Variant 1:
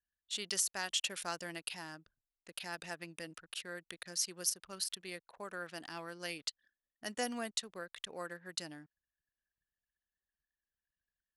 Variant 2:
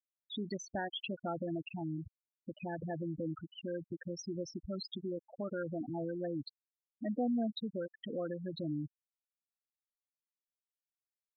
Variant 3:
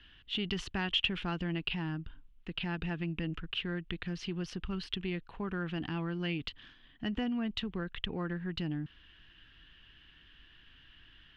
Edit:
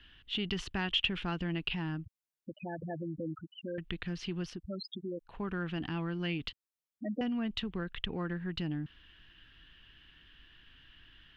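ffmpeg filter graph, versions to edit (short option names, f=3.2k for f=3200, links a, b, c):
-filter_complex "[1:a]asplit=3[a][b][c];[2:a]asplit=4[d][e][f][g];[d]atrim=end=2.052[h];[a]atrim=start=2.048:end=3.782[i];[e]atrim=start=3.778:end=4.63[j];[b]atrim=start=4.47:end=5.36[k];[f]atrim=start=5.2:end=6.532[l];[c]atrim=start=6.528:end=7.212[m];[g]atrim=start=7.208[n];[h][i]acrossfade=d=0.004:c1=hsin:c2=hsin[o];[o][j]acrossfade=d=0.004:c1=hsin:c2=hsin[p];[p][k]acrossfade=d=0.16:c1=tri:c2=tri[q];[q][l]acrossfade=d=0.16:c1=tri:c2=tri[r];[r][m]acrossfade=d=0.004:c1=hsin:c2=hsin[s];[s][n]acrossfade=d=0.004:c1=hsin:c2=hsin"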